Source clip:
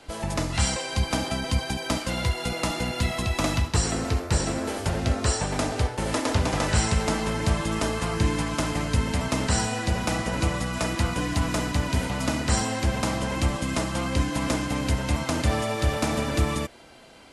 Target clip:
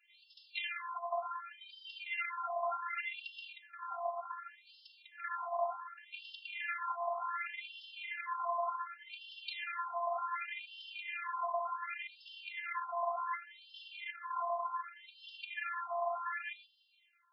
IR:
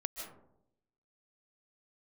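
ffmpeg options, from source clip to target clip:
-filter_complex "[0:a]asplit=2[a][b];[b]volume=31.5dB,asoftclip=hard,volume=-31.5dB,volume=-11dB[c];[a][c]amix=inputs=2:normalize=0,afwtdn=0.0282,asplit=2[d][e];[1:a]atrim=start_sample=2205,asetrate=88200,aresample=44100,adelay=96[f];[e][f]afir=irnorm=-1:irlink=0,volume=-15.5dB[g];[d][g]amix=inputs=2:normalize=0,alimiter=limit=-20dB:level=0:latency=1:release=27,afftfilt=real='hypot(re,im)*cos(PI*b)':imag='0':win_size=512:overlap=0.75,afftfilt=real='re*between(b*sr/1024,890*pow(3900/890,0.5+0.5*sin(2*PI*0.67*pts/sr))/1.41,890*pow(3900/890,0.5+0.5*sin(2*PI*0.67*pts/sr))*1.41)':imag='im*between(b*sr/1024,890*pow(3900/890,0.5+0.5*sin(2*PI*0.67*pts/sr))/1.41,890*pow(3900/890,0.5+0.5*sin(2*PI*0.67*pts/sr))*1.41)':win_size=1024:overlap=0.75,volume=2.5dB"

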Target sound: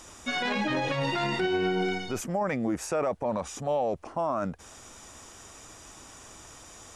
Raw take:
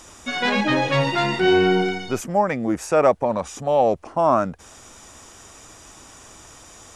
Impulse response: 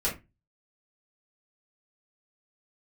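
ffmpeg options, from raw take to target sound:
-af "alimiter=limit=-16.5dB:level=0:latency=1:release=18,volume=-3.5dB"

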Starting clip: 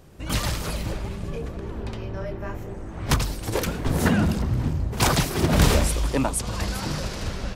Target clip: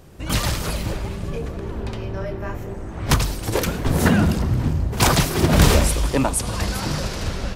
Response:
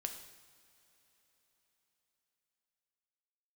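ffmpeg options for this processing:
-filter_complex "[0:a]asplit=2[a][b];[1:a]atrim=start_sample=2205,asetrate=39249,aresample=44100,highshelf=f=12k:g=5.5[c];[b][c]afir=irnorm=-1:irlink=0,volume=-7dB[d];[a][d]amix=inputs=2:normalize=0,volume=1dB"

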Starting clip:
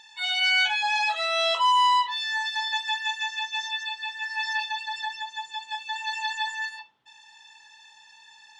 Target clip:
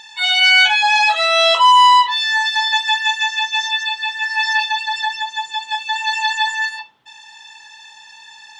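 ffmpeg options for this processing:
-af "acontrast=53,volume=5dB"

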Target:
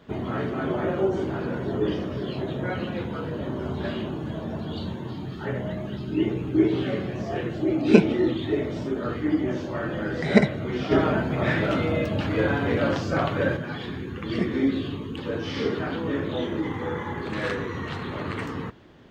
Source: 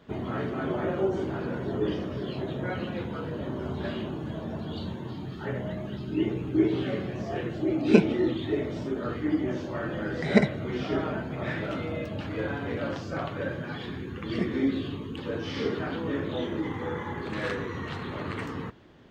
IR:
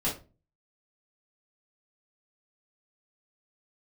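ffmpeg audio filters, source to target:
-filter_complex "[0:a]asettb=1/sr,asplit=3[a][b][c];[a]atrim=end=10.914[d];[b]atrim=start=10.91:end=13.57,asetpts=PTS-STARTPTS,afade=t=in:d=0.004:c=qsin,afade=t=out:st=2.656:d=0.004:c=qsin,acontrast=29[e];[c]atrim=start=13.566[f];[d][e]acrossfade=d=0.004:c1=hsin:c2=qsin[g];[g][f]acrossfade=d=0.004:c1=qsin:c2=hsin,volume=3dB"

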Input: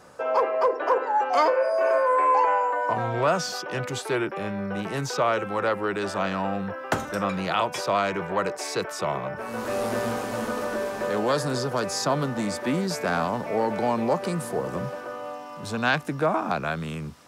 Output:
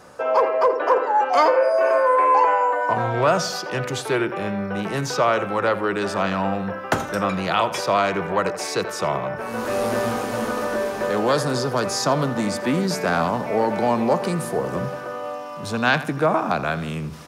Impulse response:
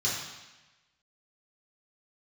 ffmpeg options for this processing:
-filter_complex "[0:a]areverse,acompressor=mode=upward:threshold=-39dB:ratio=2.5,areverse,bandreject=f=7.7k:w=19,asplit=2[a][b];[b]adelay=83,lowpass=f=3.4k:p=1,volume=-13.5dB,asplit=2[c][d];[d]adelay=83,lowpass=f=3.4k:p=1,volume=0.46,asplit=2[e][f];[f]adelay=83,lowpass=f=3.4k:p=1,volume=0.46,asplit=2[g][h];[h]adelay=83,lowpass=f=3.4k:p=1,volume=0.46[i];[a][c][e][g][i]amix=inputs=5:normalize=0,volume=4dB"

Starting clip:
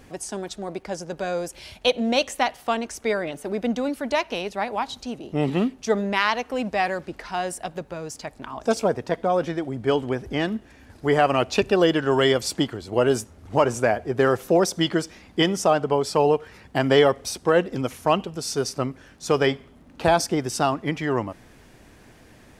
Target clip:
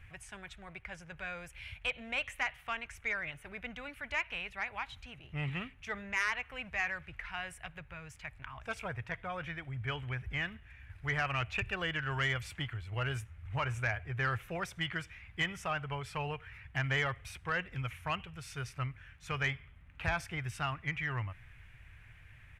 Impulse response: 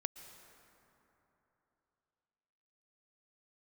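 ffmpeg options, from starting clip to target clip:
-filter_complex "[0:a]firequalizer=gain_entry='entry(110,0);entry(220,-25);entry(340,-26);entry(1400,-6);entry(2300,1);entry(4600,-22);entry(9900,-17)':delay=0.05:min_phase=1,acrossover=split=2700[a][b];[b]acompressor=threshold=-43dB:ratio=4:attack=1:release=60[c];[a][c]amix=inputs=2:normalize=0,asoftclip=type=tanh:threshold=-22.5dB"

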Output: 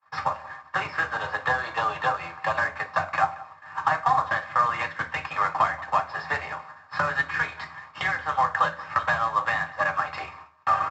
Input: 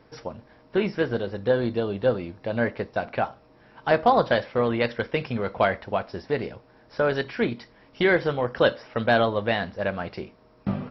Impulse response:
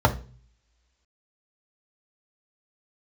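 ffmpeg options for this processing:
-filter_complex "[0:a]aeval=exprs='if(lt(val(0),0),0.708*val(0),val(0))':c=same,lowpass=f=4.8k:w=0.5412,lowpass=f=4.8k:w=1.3066,agate=range=-39dB:threshold=-54dB:ratio=16:detection=peak,highpass=f=920:w=0.5412,highpass=f=920:w=1.3066,acompressor=threshold=-41dB:ratio=16,aresample=16000,acrusher=bits=2:mode=log:mix=0:aa=0.000001,aresample=44100,asplit=2[a][b];[b]adelay=180.8,volume=-19dB,highshelf=f=4k:g=-4.07[c];[a][c]amix=inputs=2:normalize=0[d];[1:a]atrim=start_sample=2205,asetrate=57330,aresample=44100[e];[d][e]afir=irnorm=-1:irlink=0,volume=3dB"

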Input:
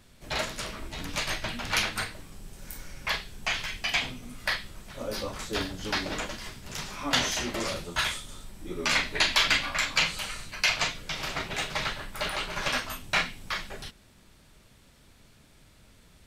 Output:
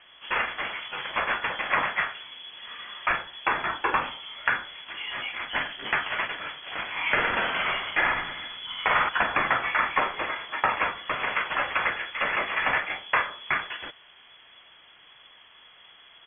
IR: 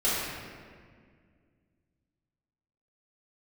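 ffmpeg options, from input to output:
-filter_complex "[0:a]equalizer=f=1.5k:t=o:w=2.8:g=8,acrossover=split=120|980[a][b][c];[a]acompressor=threshold=-45dB:ratio=4[d];[b]acompressor=threshold=-42dB:ratio=4[e];[c]acompressor=threshold=-22dB:ratio=4[f];[d][e][f]amix=inputs=3:normalize=0,asplit=3[g][h][i];[g]afade=t=out:st=6.95:d=0.02[j];[h]aecho=1:1:50|115|199.5|309.4|452.2:0.631|0.398|0.251|0.158|0.1,afade=t=in:st=6.95:d=0.02,afade=t=out:st=9.08:d=0.02[k];[i]afade=t=in:st=9.08:d=0.02[l];[j][k][l]amix=inputs=3:normalize=0,lowpass=f=2.9k:t=q:w=0.5098,lowpass=f=2.9k:t=q:w=0.6013,lowpass=f=2.9k:t=q:w=0.9,lowpass=f=2.9k:t=q:w=2.563,afreqshift=-3400,volume=2dB"

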